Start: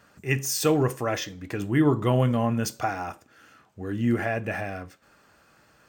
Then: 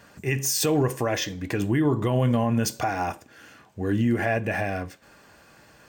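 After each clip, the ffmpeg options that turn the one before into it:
ffmpeg -i in.wav -af "bandreject=frequency=1300:width=6.9,alimiter=limit=-20.5dB:level=0:latency=1:release=177,volume=6.5dB" out.wav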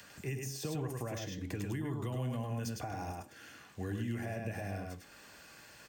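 ffmpeg -i in.wav -filter_complex "[0:a]acrossover=split=590|1800[link_01][link_02][link_03];[link_03]acompressor=mode=upward:threshold=-43dB:ratio=2.5[link_04];[link_01][link_02][link_04]amix=inputs=3:normalize=0,aecho=1:1:102:0.631,acrossover=split=180|740|4700[link_05][link_06][link_07][link_08];[link_05]acompressor=threshold=-31dB:ratio=4[link_09];[link_06]acompressor=threshold=-36dB:ratio=4[link_10];[link_07]acompressor=threshold=-43dB:ratio=4[link_11];[link_08]acompressor=threshold=-42dB:ratio=4[link_12];[link_09][link_10][link_11][link_12]amix=inputs=4:normalize=0,volume=-7dB" out.wav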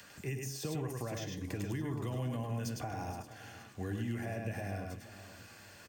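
ffmpeg -i in.wav -af "aecho=1:1:471|942|1413|1884:0.178|0.0729|0.0299|0.0123" out.wav

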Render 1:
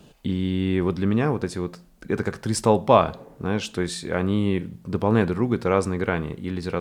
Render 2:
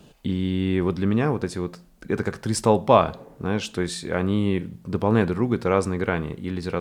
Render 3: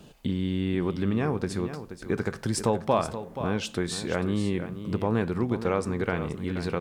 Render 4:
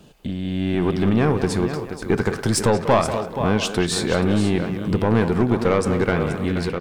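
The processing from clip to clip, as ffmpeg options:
ffmpeg -i in.wav -af anull out.wav
ffmpeg -i in.wav -af "acompressor=threshold=-26dB:ratio=2,aecho=1:1:478:0.282" out.wav
ffmpeg -i in.wav -filter_complex "[0:a]aeval=exprs='(tanh(7.94*val(0)+0.3)-tanh(0.3))/7.94':channel_layout=same,dynaudnorm=framelen=440:gausssize=3:maxgain=8dB,asplit=2[link_01][link_02];[link_02]adelay=190,highpass=300,lowpass=3400,asoftclip=type=hard:threshold=-17.5dB,volume=-7dB[link_03];[link_01][link_03]amix=inputs=2:normalize=0,volume=2dB" out.wav

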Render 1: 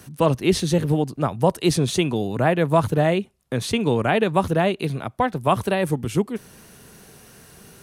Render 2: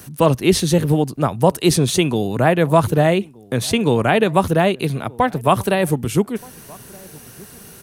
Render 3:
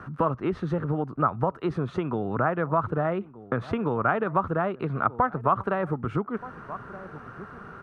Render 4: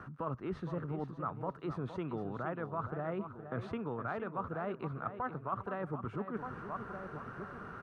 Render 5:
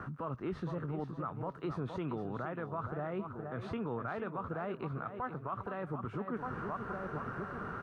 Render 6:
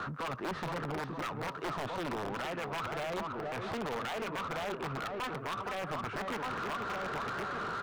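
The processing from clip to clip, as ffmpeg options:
ffmpeg -i in.wav -filter_complex "[0:a]highshelf=frequency=11000:gain=10,asplit=2[link_01][link_02];[link_02]adelay=1224,volume=-24dB,highshelf=frequency=4000:gain=-27.6[link_03];[link_01][link_03]amix=inputs=2:normalize=0,volume=4dB" out.wav
ffmpeg -i in.wav -af "acompressor=threshold=-23dB:ratio=5,lowpass=frequency=1300:width_type=q:width=6.1,volume=-2dB" out.wav
ffmpeg -i in.wav -af "areverse,acompressor=threshold=-31dB:ratio=6,areverse,aecho=1:1:465|930|1395:0.316|0.0759|0.0182,volume=-4dB" out.wav
ffmpeg -i in.wav -filter_complex "[0:a]acrossover=split=2300[link_01][link_02];[link_01]alimiter=level_in=10.5dB:limit=-24dB:level=0:latency=1:release=165,volume=-10.5dB[link_03];[link_02]flanger=delay=19:depth=3.7:speed=0.98[link_04];[link_03][link_04]amix=inputs=2:normalize=0,volume=5.5dB" out.wav
ffmpeg -i in.wav -filter_complex "[0:a]aeval=exprs='(mod(33.5*val(0)+1,2)-1)/33.5':channel_layout=same,asplit=2[link_01][link_02];[link_02]highpass=frequency=720:poles=1,volume=22dB,asoftclip=type=tanh:threshold=-30.5dB[link_03];[link_01][link_03]amix=inputs=2:normalize=0,lowpass=frequency=2800:poles=1,volume=-6dB" out.wav

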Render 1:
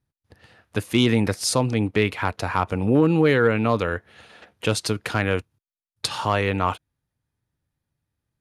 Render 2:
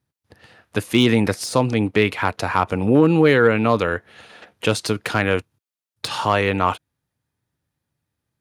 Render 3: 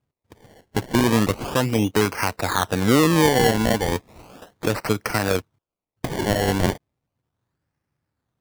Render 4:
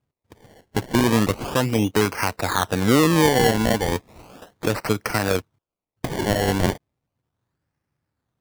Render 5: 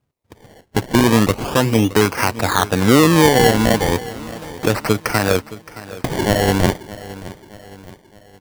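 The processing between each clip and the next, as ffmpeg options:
ffmpeg -i in.wav -af "highpass=frequency=120:poles=1,deesser=0.5,volume=4dB" out.wav
ffmpeg -i in.wav -af "alimiter=limit=-7dB:level=0:latency=1:release=195,acrusher=samples=24:mix=1:aa=0.000001:lfo=1:lforange=24:lforate=0.35" out.wav
ffmpeg -i in.wav -af anull out.wav
ffmpeg -i in.wav -af "aecho=1:1:619|1238|1857|2476:0.141|0.0664|0.0312|0.0147,volume=5dB" out.wav

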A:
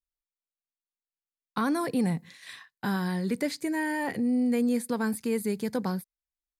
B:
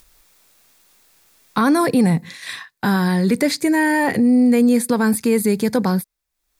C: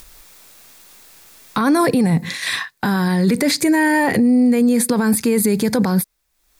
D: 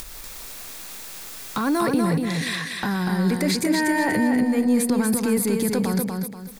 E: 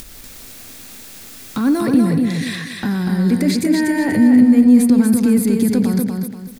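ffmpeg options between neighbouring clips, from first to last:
ffmpeg -i in.wav -filter_complex "[0:a]bandreject=frequency=3000:width=16,asplit=2[link_01][link_02];[link_02]alimiter=level_in=1.5dB:limit=-24dB:level=0:latency=1:release=38,volume=-1.5dB,volume=1dB[link_03];[link_01][link_03]amix=inputs=2:normalize=0,acompressor=mode=upward:threshold=-41dB:ratio=2.5,volume=7.5dB" out.wav
ffmpeg -i in.wav -af "alimiter=level_in=17.5dB:limit=-1dB:release=50:level=0:latency=1,volume=-7.5dB" out.wav
ffmpeg -i in.wav -filter_complex "[0:a]acompressor=mode=upward:threshold=-20dB:ratio=2.5,asoftclip=type=tanh:threshold=-6.5dB,asplit=2[link_01][link_02];[link_02]aecho=0:1:241|482|723|964:0.631|0.215|0.0729|0.0248[link_03];[link_01][link_03]amix=inputs=2:normalize=0,volume=-6dB" out.wav
ffmpeg -i in.wav -filter_complex "[0:a]aeval=exprs='val(0)*gte(abs(val(0)),0.00473)':channel_layout=same,equalizer=frequency=100:width_type=o:width=0.67:gain=10,equalizer=frequency=250:width_type=o:width=0.67:gain=10,equalizer=frequency=1000:width_type=o:width=0.67:gain=-5,asplit=2[link_01][link_02];[link_02]adelay=90,highpass=300,lowpass=3400,asoftclip=type=hard:threshold=-12dB,volume=-12dB[link_03];[link_01][link_03]amix=inputs=2:normalize=0" out.wav

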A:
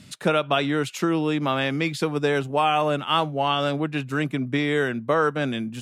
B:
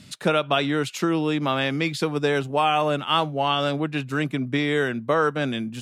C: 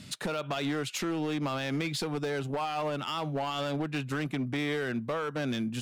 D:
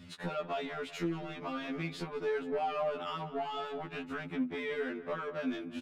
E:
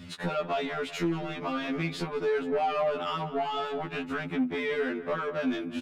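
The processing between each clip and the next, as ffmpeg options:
ffmpeg -i in.wav -af "equalizer=frequency=4300:width=1.5:gain=2.5" out.wav
ffmpeg -i in.wav -af "alimiter=limit=-15.5dB:level=0:latency=1:release=79,acompressor=threshold=-27dB:ratio=5,asoftclip=type=hard:threshold=-26.5dB" out.wav
ffmpeg -i in.wav -filter_complex "[0:a]bass=frequency=250:gain=0,treble=frequency=4000:gain=-14,asplit=2[link_01][link_02];[link_02]adelay=192,lowpass=frequency=2200:poles=1,volume=-13dB,asplit=2[link_03][link_04];[link_04]adelay=192,lowpass=frequency=2200:poles=1,volume=0.45,asplit=2[link_05][link_06];[link_06]adelay=192,lowpass=frequency=2200:poles=1,volume=0.45,asplit=2[link_07][link_08];[link_08]adelay=192,lowpass=frequency=2200:poles=1,volume=0.45[link_09];[link_01][link_03][link_05][link_07][link_09]amix=inputs=5:normalize=0,afftfilt=real='re*2*eq(mod(b,4),0)':imag='im*2*eq(mod(b,4),0)':win_size=2048:overlap=0.75,volume=-1.5dB" out.wav
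ffmpeg -i in.wav -af "asoftclip=type=tanh:threshold=-26dB,volume=7dB" out.wav

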